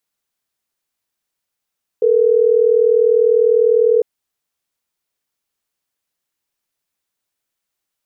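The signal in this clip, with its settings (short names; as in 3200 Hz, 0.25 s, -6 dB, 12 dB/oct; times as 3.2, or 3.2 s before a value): call progress tone ringback tone, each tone -12.5 dBFS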